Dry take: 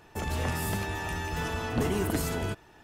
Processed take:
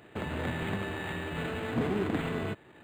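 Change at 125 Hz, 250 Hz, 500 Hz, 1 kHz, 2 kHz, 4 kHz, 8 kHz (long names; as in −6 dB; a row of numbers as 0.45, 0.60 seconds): −4.0, 0.0, −1.0, −4.0, −2.0, −3.5, −16.5 decibels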